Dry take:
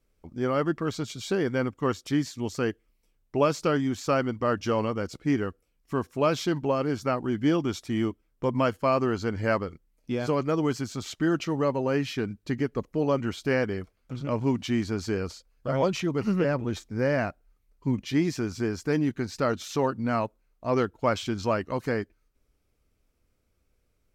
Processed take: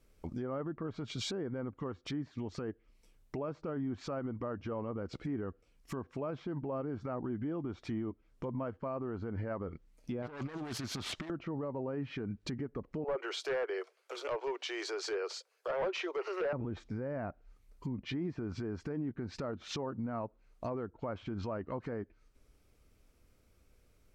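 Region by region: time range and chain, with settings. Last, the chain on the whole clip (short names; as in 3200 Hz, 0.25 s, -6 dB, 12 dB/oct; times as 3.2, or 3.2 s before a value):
10.22–11.3 self-modulated delay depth 0.42 ms + low shelf 460 Hz -4.5 dB + negative-ratio compressor -36 dBFS, ratio -0.5
13.04–16.53 steep high-pass 370 Hz 72 dB/oct + hard clip -25.5 dBFS
whole clip: treble ducked by the level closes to 1200 Hz, closed at -24.5 dBFS; compressor 3:1, threshold -37 dBFS; limiter -34.5 dBFS; gain +5 dB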